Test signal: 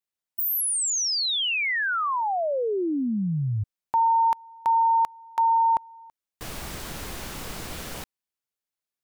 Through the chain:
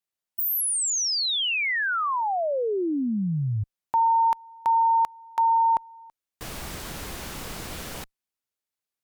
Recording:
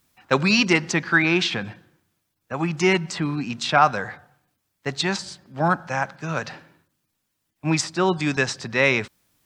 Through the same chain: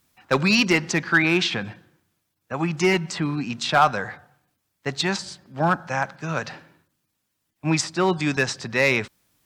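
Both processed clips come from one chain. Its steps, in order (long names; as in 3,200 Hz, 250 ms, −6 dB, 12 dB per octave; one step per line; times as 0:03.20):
asymmetric clip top −10.5 dBFS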